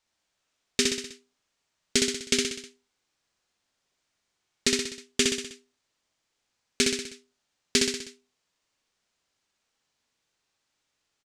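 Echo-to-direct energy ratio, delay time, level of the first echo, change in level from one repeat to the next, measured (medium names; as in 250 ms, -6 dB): -1.5 dB, 63 ms, -3.0 dB, -5.0 dB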